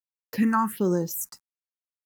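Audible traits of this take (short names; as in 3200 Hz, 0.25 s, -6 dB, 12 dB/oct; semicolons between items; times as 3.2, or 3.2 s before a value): a quantiser's noise floor 10-bit, dither none; phasing stages 4, 1.3 Hz, lowest notch 470–2900 Hz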